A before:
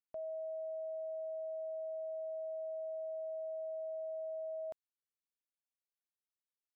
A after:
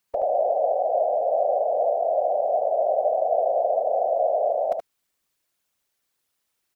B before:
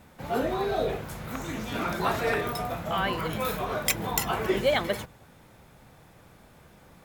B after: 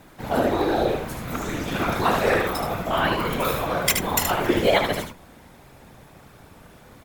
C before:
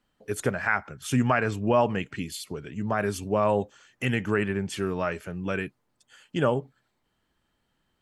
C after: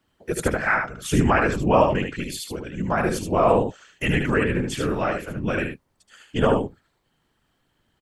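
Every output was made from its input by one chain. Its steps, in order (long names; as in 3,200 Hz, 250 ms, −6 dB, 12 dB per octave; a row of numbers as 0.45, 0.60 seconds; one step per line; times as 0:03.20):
random phases in short frames
on a send: single-tap delay 75 ms −5.5 dB
on the sum: loudness normalisation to −23 LKFS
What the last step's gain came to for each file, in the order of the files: +18.0, +4.5, +4.0 decibels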